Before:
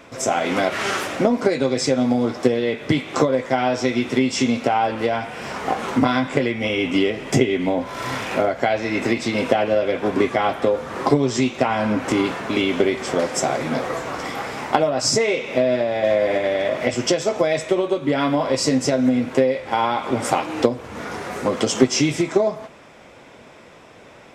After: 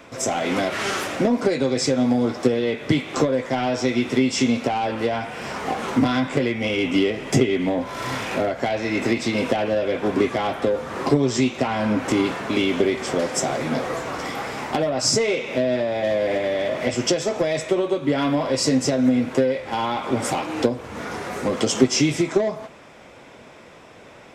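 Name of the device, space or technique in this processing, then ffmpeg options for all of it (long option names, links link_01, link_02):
one-band saturation: -filter_complex "[0:a]acrossover=split=440|3100[link_01][link_02][link_03];[link_02]asoftclip=type=tanh:threshold=-22dB[link_04];[link_01][link_04][link_03]amix=inputs=3:normalize=0"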